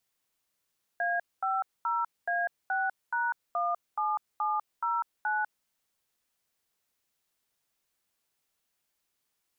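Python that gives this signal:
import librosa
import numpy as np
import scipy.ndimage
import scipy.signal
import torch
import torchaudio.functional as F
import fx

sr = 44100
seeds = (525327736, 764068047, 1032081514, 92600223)

y = fx.dtmf(sr, digits='A50A6#17709', tone_ms=198, gap_ms=227, level_db=-29.0)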